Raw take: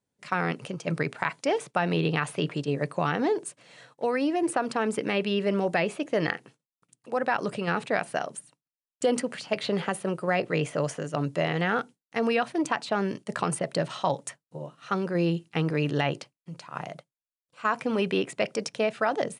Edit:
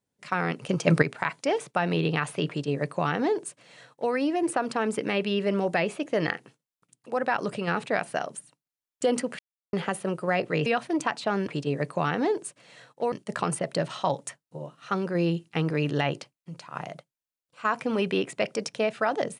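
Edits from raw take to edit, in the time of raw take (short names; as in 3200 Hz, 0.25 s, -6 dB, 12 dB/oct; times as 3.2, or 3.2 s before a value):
0.69–1.02 gain +8.5 dB
2.48–4.13 copy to 13.12
9.39–9.73 mute
10.66–12.31 cut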